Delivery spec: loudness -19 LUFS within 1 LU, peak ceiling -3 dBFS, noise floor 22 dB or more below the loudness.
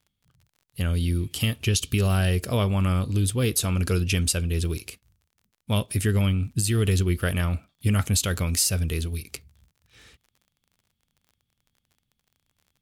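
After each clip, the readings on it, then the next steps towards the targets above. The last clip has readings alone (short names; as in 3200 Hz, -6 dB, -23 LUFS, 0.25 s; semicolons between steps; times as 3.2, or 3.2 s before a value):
ticks 34/s; loudness -24.5 LUFS; peak -9.5 dBFS; loudness target -19.0 LUFS
-> de-click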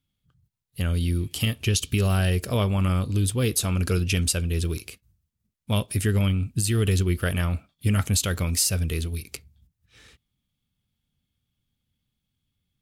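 ticks 0.23/s; loudness -24.5 LUFS; peak -9.5 dBFS; loudness target -19.0 LUFS
-> gain +5.5 dB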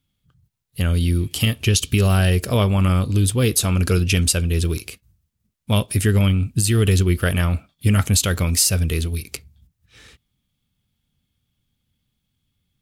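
loudness -19.0 LUFS; peak -4.0 dBFS; noise floor -75 dBFS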